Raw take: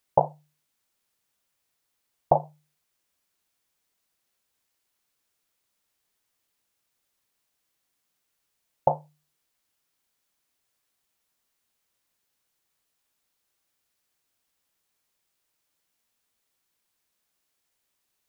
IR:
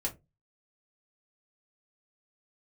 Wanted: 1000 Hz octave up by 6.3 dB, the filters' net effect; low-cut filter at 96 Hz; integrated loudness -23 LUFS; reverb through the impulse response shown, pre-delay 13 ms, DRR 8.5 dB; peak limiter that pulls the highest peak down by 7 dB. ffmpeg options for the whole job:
-filter_complex "[0:a]highpass=96,equalizer=f=1k:t=o:g=8.5,alimiter=limit=-6dB:level=0:latency=1,asplit=2[a][b];[1:a]atrim=start_sample=2205,adelay=13[c];[b][c]afir=irnorm=-1:irlink=0,volume=-11.5dB[d];[a][d]amix=inputs=2:normalize=0,volume=4dB"

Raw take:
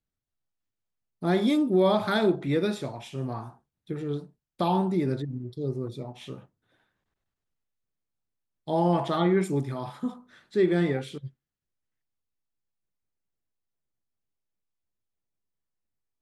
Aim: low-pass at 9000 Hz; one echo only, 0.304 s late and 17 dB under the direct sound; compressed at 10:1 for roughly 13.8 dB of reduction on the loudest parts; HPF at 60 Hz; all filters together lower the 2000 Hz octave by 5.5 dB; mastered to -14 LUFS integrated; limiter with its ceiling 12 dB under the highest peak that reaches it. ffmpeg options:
-af "highpass=60,lowpass=9k,equalizer=f=2k:t=o:g=-7.5,acompressor=threshold=-32dB:ratio=10,alimiter=level_in=7.5dB:limit=-24dB:level=0:latency=1,volume=-7.5dB,aecho=1:1:304:0.141,volume=27.5dB"

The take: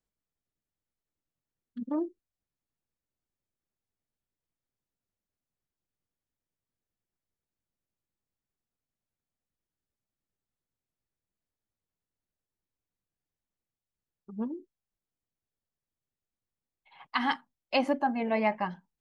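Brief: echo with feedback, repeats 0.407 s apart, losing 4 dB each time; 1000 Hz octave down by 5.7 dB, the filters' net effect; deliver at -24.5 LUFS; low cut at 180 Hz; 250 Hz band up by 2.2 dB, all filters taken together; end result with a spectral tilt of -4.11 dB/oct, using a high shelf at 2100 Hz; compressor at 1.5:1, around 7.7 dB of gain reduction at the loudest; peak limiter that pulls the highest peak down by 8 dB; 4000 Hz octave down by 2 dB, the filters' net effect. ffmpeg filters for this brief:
-af "highpass=180,equalizer=f=250:t=o:g=4,equalizer=f=1k:t=o:g=-8.5,highshelf=f=2.1k:g=5.5,equalizer=f=4k:t=o:g=-8,acompressor=threshold=-44dB:ratio=1.5,alimiter=level_in=5dB:limit=-24dB:level=0:latency=1,volume=-5dB,aecho=1:1:407|814|1221|1628|2035|2442|2849|3256|3663:0.631|0.398|0.25|0.158|0.0994|0.0626|0.0394|0.0249|0.0157,volume=17dB"

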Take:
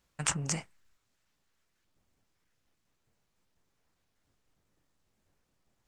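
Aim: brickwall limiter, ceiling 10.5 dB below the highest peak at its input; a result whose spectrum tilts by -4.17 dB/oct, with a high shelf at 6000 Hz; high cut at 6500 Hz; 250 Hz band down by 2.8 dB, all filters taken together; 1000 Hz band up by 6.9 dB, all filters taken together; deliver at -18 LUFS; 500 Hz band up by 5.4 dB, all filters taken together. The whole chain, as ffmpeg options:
-af "lowpass=6.5k,equalizer=f=250:t=o:g=-8,equalizer=f=500:t=o:g=6.5,equalizer=f=1k:t=o:g=7.5,highshelf=f=6k:g=-4,volume=20.5dB,alimiter=limit=-1dB:level=0:latency=1"

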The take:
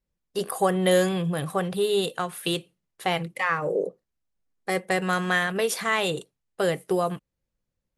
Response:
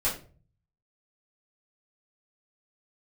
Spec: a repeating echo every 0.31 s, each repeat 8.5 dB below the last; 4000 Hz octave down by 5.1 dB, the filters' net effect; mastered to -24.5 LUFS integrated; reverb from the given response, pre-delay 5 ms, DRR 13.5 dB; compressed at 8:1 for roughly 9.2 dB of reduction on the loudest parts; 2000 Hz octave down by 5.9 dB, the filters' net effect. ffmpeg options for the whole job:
-filter_complex "[0:a]equalizer=f=2k:t=o:g=-6.5,equalizer=f=4k:t=o:g=-4,acompressor=threshold=-26dB:ratio=8,aecho=1:1:310|620|930|1240:0.376|0.143|0.0543|0.0206,asplit=2[a][b];[1:a]atrim=start_sample=2205,adelay=5[c];[b][c]afir=irnorm=-1:irlink=0,volume=-22.5dB[d];[a][d]amix=inputs=2:normalize=0,volume=7dB"

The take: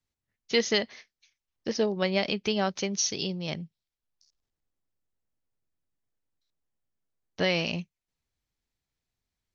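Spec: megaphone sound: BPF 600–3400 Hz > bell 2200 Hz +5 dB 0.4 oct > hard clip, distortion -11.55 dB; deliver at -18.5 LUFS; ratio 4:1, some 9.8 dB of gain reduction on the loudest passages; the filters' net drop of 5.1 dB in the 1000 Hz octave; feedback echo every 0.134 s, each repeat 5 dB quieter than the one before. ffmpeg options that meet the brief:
-af "equalizer=f=1k:t=o:g=-6,acompressor=threshold=-33dB:ratio=4,highpass=600,lowpass=3.4k,equalizer=f=2.2k:t=o:w=0.4:g=5,aecho=1:1:134|268|402|536|670|804|938:0.562|0.315|0.176|0.0988|0.0553|0.031|0.0173,asoftclip=type=hard:threshold=-34.5dB,volume=23dB"

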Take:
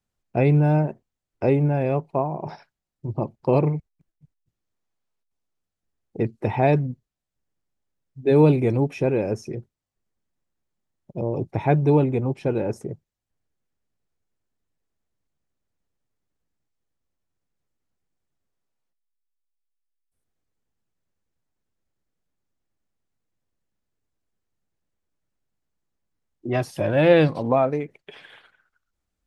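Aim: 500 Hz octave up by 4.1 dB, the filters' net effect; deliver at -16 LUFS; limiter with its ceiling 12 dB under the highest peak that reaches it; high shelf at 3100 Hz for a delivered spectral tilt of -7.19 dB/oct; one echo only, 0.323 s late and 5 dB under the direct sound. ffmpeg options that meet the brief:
-af "equalizer=f=500:t=o:g=5,highshelf=f=3.1k:g=-4.5,alimiter=limit=-13.5dB:level=0:latency=1,aecho=1:1:323:0.562,volume=8dB"

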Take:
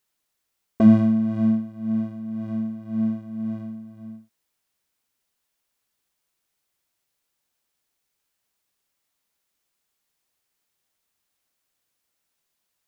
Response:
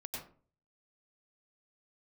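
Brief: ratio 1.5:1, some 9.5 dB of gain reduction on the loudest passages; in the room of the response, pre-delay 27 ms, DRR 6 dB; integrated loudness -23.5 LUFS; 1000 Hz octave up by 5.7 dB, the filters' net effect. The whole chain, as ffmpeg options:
-filter_complex "[0:a]equalizer=f=1k:t=o:g=8,acompressor=threshold=-35dB:ratio=1.5,asplit=2[a][b];[1:a]atrim=start_sample=2205,adelay=27[c];[b][c]afir=irnorm=-1:irlink=0,volume=-5dB[d];[a][d]amix=inputs=2:normalize=0,volume=5dB"

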